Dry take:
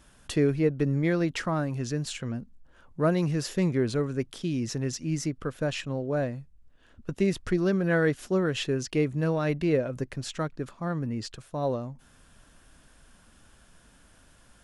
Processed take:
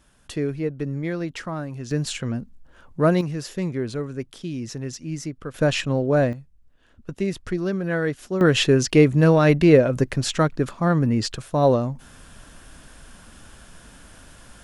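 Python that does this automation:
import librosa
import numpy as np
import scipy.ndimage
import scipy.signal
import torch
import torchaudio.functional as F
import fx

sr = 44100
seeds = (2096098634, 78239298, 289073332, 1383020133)

y = fx.gain(x, sr, db=fx.steps((0.0, -2.0), (1.91, 6.0), (3.21, -1.0), (5.54, 9.0), (6.33, 0.0), (8.41, 11.0)))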